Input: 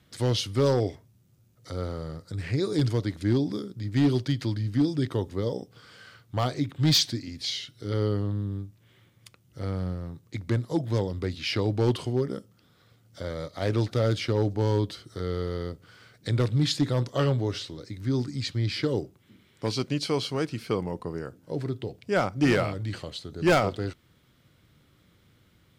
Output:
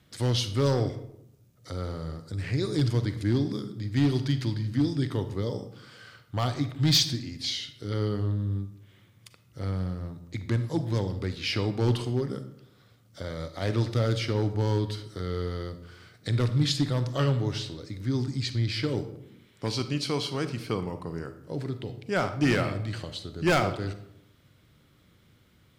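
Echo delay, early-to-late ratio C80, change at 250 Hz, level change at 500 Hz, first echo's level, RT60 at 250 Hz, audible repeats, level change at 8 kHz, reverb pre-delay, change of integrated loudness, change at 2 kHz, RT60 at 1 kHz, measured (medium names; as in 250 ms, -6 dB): no echo, 14.0 dB, -1.5 dB, -3.0 dB, no echo, 0.90 s, no echo, +0.5 dB, 37 ms, -1.0 dB, 0.0 dB, 0.75 s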